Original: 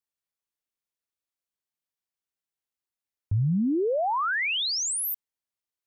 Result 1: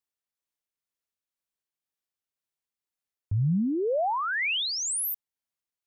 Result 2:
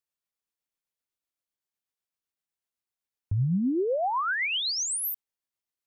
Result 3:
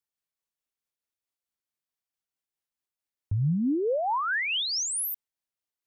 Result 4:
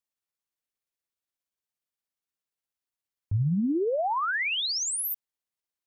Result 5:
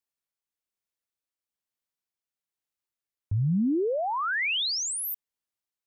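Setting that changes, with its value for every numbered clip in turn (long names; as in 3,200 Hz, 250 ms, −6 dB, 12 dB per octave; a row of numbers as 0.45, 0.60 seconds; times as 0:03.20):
amplitude tremolo, speed: 2, 7.9, 4.6, 17, 1.1 Hertz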